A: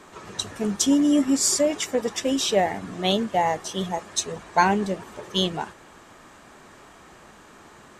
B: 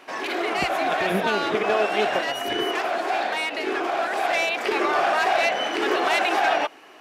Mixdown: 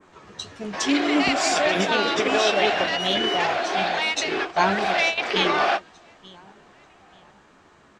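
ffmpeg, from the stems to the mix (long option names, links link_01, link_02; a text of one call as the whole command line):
ffmpeg -i stem1.wav -i stem2.wav -filter_complex "[0:a]flanger=delay=9.9:depth=4.9:regen=50:speed=1.7:shape=triangular,volume=-1.5dB,asplit=3[link_01][link_02][link_03];[link_02]volume=-18.5dB[link_04];[1:a]adelay=650,volume=-0.5dB[link_05];[link_03]apad=whole_len=337519[link_06];[link_05][link_06]sidechaingate=range=-35dB:threshold=-46dB:ratio=16:detection=peak[link_07];[link_04]aecho=0:1:885|1770|2655|3540|4425:1|0.32|0.102|0.0328|0.0105[link_08];[link_01][link_07][link_08]amix=inputs=3:normalize=0,lowpass=5600,adynamicequalizer=threshold=0.00794:dfrequency=4300:dqfactor=0.74:tfrequency=4300:tqfactor=0.74:attack=5:release=100:ratio=0.375:range=3.5:mode=boostabove:tftype=bell" out.wav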